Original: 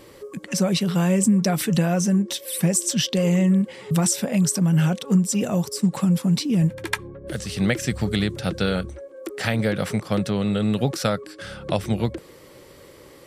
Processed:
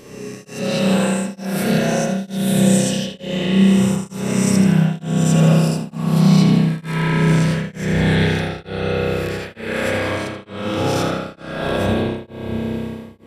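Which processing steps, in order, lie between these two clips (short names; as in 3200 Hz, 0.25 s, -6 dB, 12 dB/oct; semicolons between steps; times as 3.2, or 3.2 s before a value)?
spectral swells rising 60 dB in 1.05 s; 8.11–10.45 low shelf 290 Hz -9 dB; limiter -13 dBFS, peak gain reduction 9.5 dB; split-band echo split 440 Hz, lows 0.632 s, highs 81 ms, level -8 dB; spring tank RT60 3.4 s, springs 31 ms, chirp 55 ms, DRR -7 dB; beating tremolo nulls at 1.1 Hz; gain -1.5 dB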